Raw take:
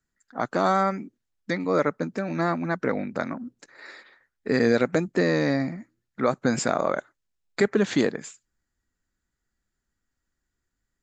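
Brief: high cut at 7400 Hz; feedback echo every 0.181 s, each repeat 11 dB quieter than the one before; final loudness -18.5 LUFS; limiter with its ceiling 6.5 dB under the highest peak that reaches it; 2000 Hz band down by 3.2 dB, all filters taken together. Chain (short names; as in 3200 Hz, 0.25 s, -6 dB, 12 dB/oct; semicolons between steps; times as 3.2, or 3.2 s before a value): LPF 7400 Hz; bell 2000 Hz -4 dB; limiter -15 dBFS; feedback echo 0.181 s, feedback 28%, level -11 dB; gain +10 dB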